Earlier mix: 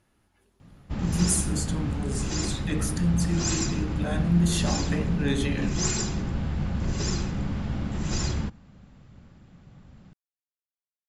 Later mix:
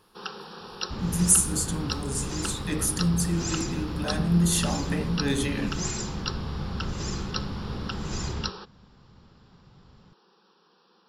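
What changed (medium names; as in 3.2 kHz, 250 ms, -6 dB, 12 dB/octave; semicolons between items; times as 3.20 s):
speech: remove distance through air 52 m; first sound: unmuted; second sound -4.5 dB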